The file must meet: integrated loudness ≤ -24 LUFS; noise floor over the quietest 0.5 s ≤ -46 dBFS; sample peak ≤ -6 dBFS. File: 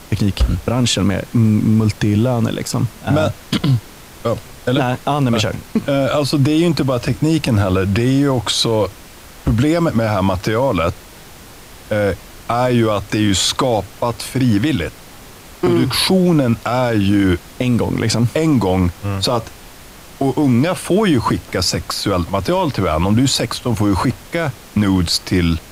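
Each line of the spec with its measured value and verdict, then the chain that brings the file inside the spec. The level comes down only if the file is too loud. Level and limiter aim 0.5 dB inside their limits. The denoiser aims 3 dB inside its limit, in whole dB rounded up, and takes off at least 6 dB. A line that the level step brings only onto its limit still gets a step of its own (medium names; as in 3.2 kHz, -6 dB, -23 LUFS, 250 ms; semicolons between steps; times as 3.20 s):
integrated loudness -17.0 LUFS: fail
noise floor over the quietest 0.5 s -38 dBFS: fail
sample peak -5.0 dBFS: fail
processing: noise reduction 6 dB, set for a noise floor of -38 dBFS; trim -7.5 dB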